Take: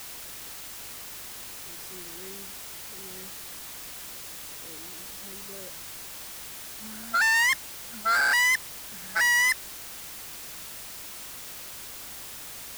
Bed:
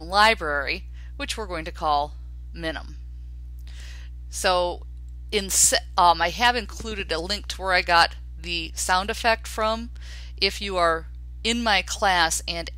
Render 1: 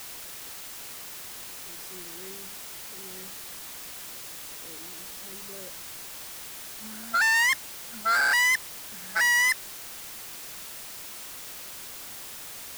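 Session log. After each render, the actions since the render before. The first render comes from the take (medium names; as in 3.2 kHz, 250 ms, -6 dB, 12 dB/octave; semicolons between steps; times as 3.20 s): de-hum 50 Hz, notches 6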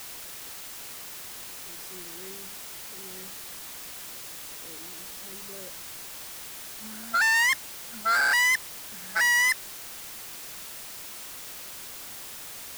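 no audible change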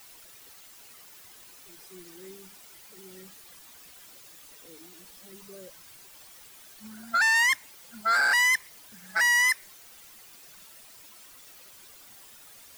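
noise reduction 12 dB, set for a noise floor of -41 dBFS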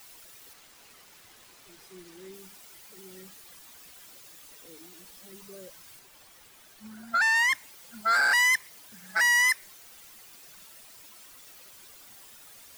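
0.53–2.34 s: hysteresis with a dead band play -47.5 dBFS; 5.99–7.55 s: treble shelf 3.6 kHz -5.5 dB; 8.39–9.29 s: high-pass 67 Hz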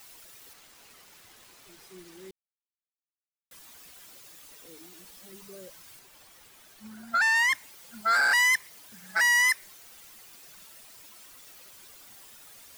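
2.31–3.51 s: mute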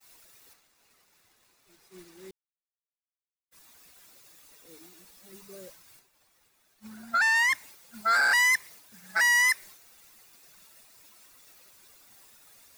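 band-stop 3.1 kHz, Q 12; expander -45 dBFS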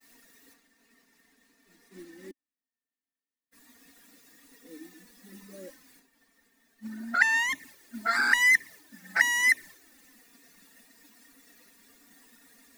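small resonant body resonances 270/1800 Hz, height 17 dB, ringing for 35 ms; touch-sensitive flanger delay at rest 4.4 ms, full sweep at -13.5 dBFS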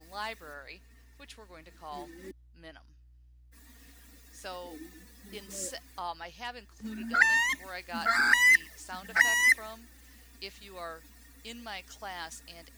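add bed -20.5 dB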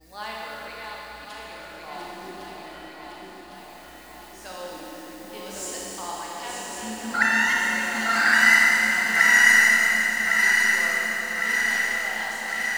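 backward echo that repeats 553 ms, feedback 80%, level -5 dB; Schroeder reverb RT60 3.7 s, combs from 28 ms, DRR -4.5 dB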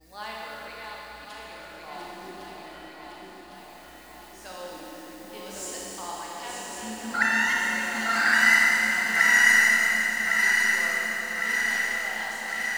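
trim -2.5 dB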